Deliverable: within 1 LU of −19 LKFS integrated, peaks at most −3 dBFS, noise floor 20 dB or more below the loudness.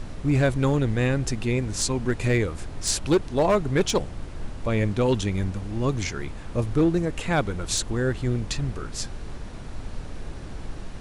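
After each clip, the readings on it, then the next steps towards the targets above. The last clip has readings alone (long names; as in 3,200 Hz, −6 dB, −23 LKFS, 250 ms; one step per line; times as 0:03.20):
share of clipped samples 0.7%; peaks flattened at −14.0 dBFS; background noise floor −37 dBFS; target noise floor −45 dBFS; integrated loudness −25.0 LKFS; sample peak −14.0 dBFS; target loudness −19.0 LKFS
→ clipped peaks rebuilt −14 dBFS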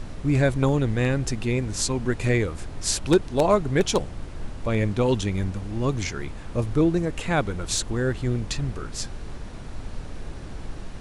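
share of clipped samples 0.0%; background noise floor −37 dBFS; target noise floor −45 dBFS
→ noise reduction from a noise print 8 dB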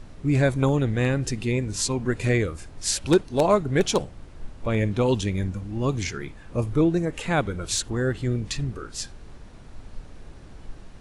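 background noise floor −45 dBFS; integrated loudness −25.0 LKFS; sample peak −5.5 dBFS; target loudness −19.0 LKFS
→ level +6 dB
brickwall limiter −3 dBFS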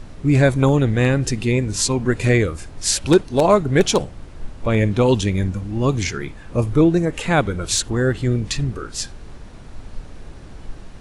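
integrated loudness −19.0 LKFS; sample peak −3.0 dBFS; background noise floor −39 dBFS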